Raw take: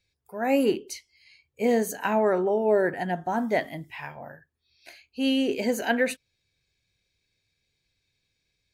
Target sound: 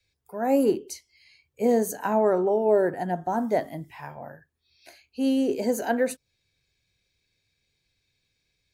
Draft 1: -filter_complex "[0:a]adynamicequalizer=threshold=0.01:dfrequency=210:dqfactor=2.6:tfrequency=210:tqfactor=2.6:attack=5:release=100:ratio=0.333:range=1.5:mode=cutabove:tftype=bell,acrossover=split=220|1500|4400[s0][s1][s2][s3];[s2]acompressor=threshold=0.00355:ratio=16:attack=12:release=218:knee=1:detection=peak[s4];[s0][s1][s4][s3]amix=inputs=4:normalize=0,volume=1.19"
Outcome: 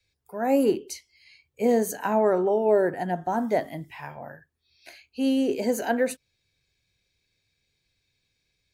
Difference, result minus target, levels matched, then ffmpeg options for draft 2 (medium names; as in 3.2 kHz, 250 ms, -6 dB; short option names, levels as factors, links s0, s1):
compression: peak gain reduction -10.5 dB
-filter_complex "[0:a]adynamicequalizer=threshold=0.01:dfrequency=210:dqfactor=2.6:tfrequency=210:tqfactor=2.6:attack=5:release=100:ratio=0.333:range=1.5:mode=cutabove:tftype=bell,acrossover=split=220|1500|4400[s0][s1][s2][s3];[s2]acompressor=threshold=0.001:ratio=16:attack=12:release=218:knee=1:detection=peak[s4];[s0][s1][s4][s3]amix=inputs=4:normalize=0,volume=1.19"